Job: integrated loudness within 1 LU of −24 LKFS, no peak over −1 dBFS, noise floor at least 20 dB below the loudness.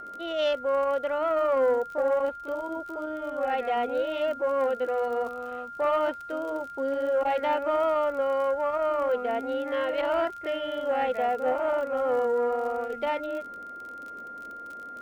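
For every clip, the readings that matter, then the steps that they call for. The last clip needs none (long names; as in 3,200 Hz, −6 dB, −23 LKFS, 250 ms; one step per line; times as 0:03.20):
crackle rate 37 per second; interfering tone 1,400 Hz; level of the tone −38 dBFS; integrated loudness −27.5 LKFS; sample peak −16.5 dBFS; target loudness −24.0 LKFS
→ click removal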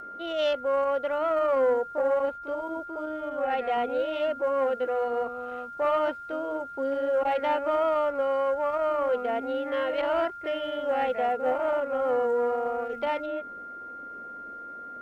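crackle rate 0.40 per second; interfering tone 1,400 Hz; level of the tone −38 dBFS
→ notch filter 1,400 Hz, Q 30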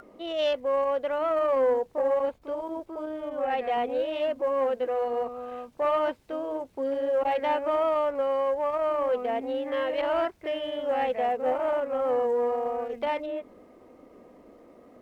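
interfering tone none found; integrated loudness −28.0 LKFS; sample peak −16.0 dBFS; target loudness −24.0 LKFS
→ level +4 dB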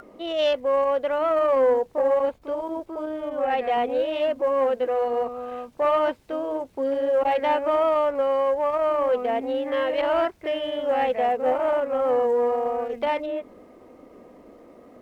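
integrated loudness −24.0 LKFS; sample peak −12.0 dBFS; background noise floor −50 dBFS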